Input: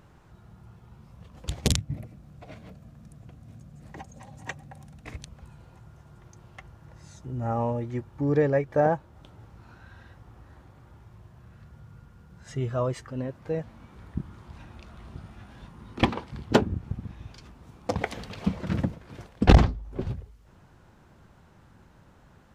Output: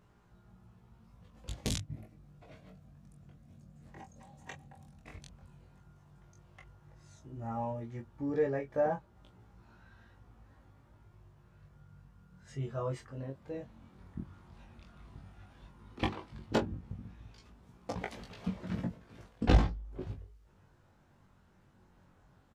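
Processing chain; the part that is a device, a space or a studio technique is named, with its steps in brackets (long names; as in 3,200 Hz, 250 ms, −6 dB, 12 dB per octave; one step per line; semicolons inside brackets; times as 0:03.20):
double-tracked vocal (double-tracking delay 22 ms −8 dB; chorus effect 0.11 Hz, delay 17 ms, depth 5.3 ms)
level −7 dB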